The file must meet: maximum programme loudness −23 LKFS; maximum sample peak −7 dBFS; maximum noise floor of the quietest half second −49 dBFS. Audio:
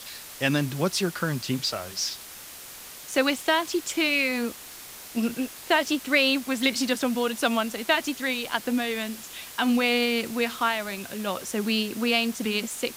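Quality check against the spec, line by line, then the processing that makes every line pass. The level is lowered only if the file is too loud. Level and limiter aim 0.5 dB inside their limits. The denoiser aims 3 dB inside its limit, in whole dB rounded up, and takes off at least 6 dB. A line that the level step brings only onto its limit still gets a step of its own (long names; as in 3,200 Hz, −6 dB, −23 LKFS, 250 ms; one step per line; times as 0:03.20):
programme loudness −25.5 LKFS: in spec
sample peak −6.5 dBFS: out of spec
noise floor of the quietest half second −43 dBFS: out of spec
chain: broadband denoise 9 dB, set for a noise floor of −43 dBFS
brickwall limiter −7.5 dBFS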